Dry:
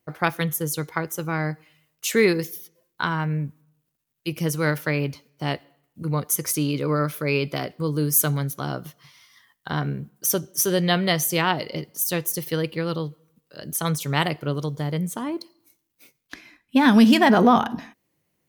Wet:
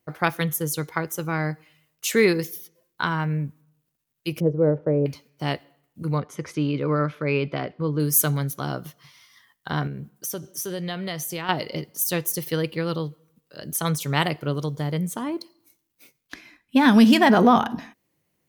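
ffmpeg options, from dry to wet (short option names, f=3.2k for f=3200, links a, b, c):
-filter_complex "[0:a]asettb=1/sr,asplit=3[a][b][c];[a]atrim=end=4.404[d];[b]atrim=start=4.4:end=5.06,asetpts=PTS-STARTPTS,afade=t=in:d=0.004:c=qsin,afade=t=out:st=0.656:d=0.004:c=qsin,lowpass=f=510:t=q:w=2.3[e];[c]atrim=start=5.056[f];[d][e]acrossfade=d=0.004:c1=hsin:c2=qsin[g];[g][f]acrossfade=d=0.004:c1=qsin:c2=hsin,asettb=1/sr,asplit=3[h][i][j];[h]atrim=end=6.184[k];[i]atrim=start=6.18:end=8,asetpts=PTS-STARTPTS,afade=t=in:d=0.004:c=qsin,afade=t=out:st=1.816:d=0.004:c=qsin,lowpass=2.7k[l];[j]atrim=start=7.996[m];[k][l]acrossfade=d=0.004:c1=hsin:c2=qsin[n];[n][m]acrossfade=d=0.004:c1=qsin:c2=hsin,asettb=1/sr,asplit=3[o][p][q];[o]atrim=end=9.874[r];[p]atrim=start=9.87:end=11.49,asetpts=PTS-STARTPTS,afade=t=in:d=0.004:c=qsin,afade=t=out:st=1.616:d=0.004:c=qsin,acompressor=threshold=-31dB:ratio=2.5:attack=3.2:release=140:knee=1:detection=peak[s];[q]atrim=start=11.486[t];[r][s]acrossfade=d=0.004:c1=hsin:c2=qsin[u];[u][t]acrossfade=d=0.004:c1=qsin:c2=hsin"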